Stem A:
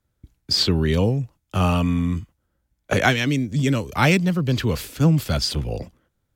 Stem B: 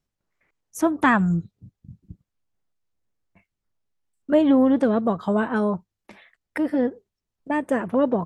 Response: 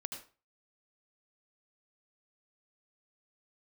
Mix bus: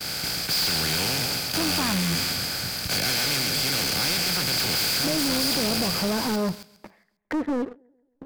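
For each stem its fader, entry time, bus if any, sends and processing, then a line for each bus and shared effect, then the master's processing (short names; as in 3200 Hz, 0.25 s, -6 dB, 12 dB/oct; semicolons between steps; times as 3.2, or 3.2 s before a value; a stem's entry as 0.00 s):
-2.0 dB, 0.00 s, no send, echo send -7 dB, per-bin compression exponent 0.2; expander -19 dBFS; pre-emphasis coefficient 0.9
0.0 dB, 0.75 s, no send, echo send -22 dB, LPF 1400 Hz 12 dB/oct; limiter -17.5 dBFS, peak gain reduction 9.5 dB; compressor, threshold -23 dBFS, peak gain reduction 3.5 dB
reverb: off
echo: feedback echo 0.135 s, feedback 46%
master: sample leveller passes 2; soft clip -22 dBFS, distortion -8 dB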